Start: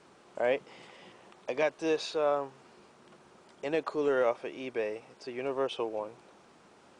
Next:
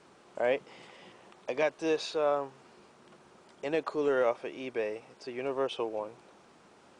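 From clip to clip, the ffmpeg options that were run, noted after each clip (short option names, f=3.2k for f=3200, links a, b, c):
-af anull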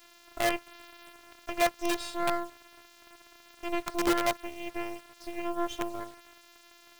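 -af "afftfilt=real='hypot(re,im)*cos(PI*b)':imag='0':win_size=512:overlap=0.75,acrusher=bits=6:dc=4:mix=0:aa=0.000001,volume=5.5dB"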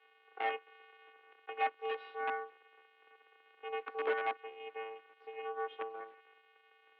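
-af "highpass=f=170:t=q:w=0.5412,highpass=f=170:t=q:w=1.307,lowpass=f=2.8k:t=q:w=0.5176,lowpass=f=2.8k:t=q:w=0.7071,lowpass=f=2.8k:t=q:w=1.932,afreqshift=100,volume=-7dB"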